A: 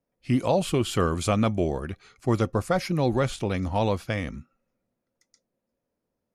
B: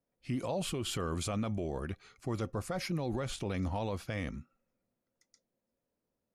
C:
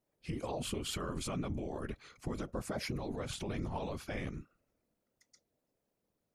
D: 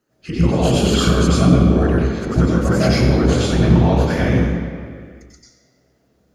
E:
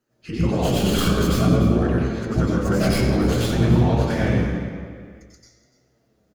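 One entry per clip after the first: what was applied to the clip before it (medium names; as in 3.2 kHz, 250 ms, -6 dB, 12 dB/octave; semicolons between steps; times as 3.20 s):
peak limiter -22 dBFS, peak gain reduction 10 dB; trim -4.5 dB
compression, threshold -37 dBFS, peak gain reduction 7 dB; whisper effect; trim +2 dB
reverberation RT60 2.2 s, pre-delay 90 ms, DRR -4 dB; trim +6.5 dB
tracing distortion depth 0.11 ms; flange 0.52 Hz, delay 8.2 ms, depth 2.3 ms, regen +54%; delay 292 ms -15.5 dB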